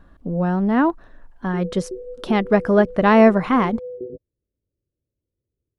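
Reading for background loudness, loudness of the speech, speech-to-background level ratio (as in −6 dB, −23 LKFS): −34.5 LKFS, −18.5 LKFS, 16.0 dB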